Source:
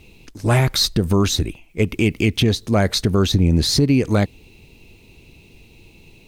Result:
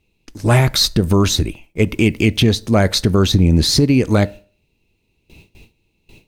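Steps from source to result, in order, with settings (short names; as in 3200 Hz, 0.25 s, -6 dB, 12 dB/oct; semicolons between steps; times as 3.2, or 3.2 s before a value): gate with hold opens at -35 dBFS; reverb RT60 0.40 s, pre-delay 3 ms, DRR 17 dB; gain +3 dB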